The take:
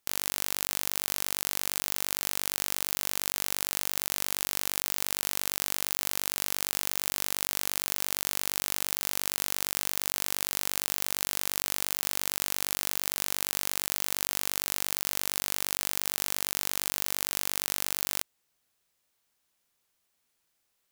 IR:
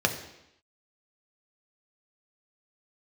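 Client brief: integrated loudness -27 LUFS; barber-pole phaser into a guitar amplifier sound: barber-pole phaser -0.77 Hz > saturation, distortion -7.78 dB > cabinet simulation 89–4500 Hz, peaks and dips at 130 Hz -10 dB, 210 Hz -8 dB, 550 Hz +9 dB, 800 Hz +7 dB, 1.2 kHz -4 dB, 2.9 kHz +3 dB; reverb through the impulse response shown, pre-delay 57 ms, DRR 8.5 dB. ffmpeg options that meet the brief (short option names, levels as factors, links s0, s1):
-filter_complex "[0:a]asplit=2[s0][s1];[1:a]atrim=start_sample=2205,adelay=57[s2];[s1][s2]afir=irnorm=-1:irlink=0,volume=0.0944[s3];[s0][s3]amix=inputs=2:normalize=0,asplit=2[s4][s5];[s5]afreqshift=-0.77[s6];[s4][s6]amix=inputs=2:normalize=1,asoftclip=threshold=0.141,highpass=89,equalizer=f=130:t=q:w=4:g=-10,equalizer=f=210:t=q:w=4:g=-8,equalizer=f=550:t=q:w=4:g=9,equalizer=f=800:t=q:w=4:g=7,equalizer=f=1200:t=q:w=4:g=-4,equalizer=f=2900:t=q:w=4:g=3,lowpass=f=4500:w=0.5412,lowpass=f=4500:w=1.3066,volume=5.01"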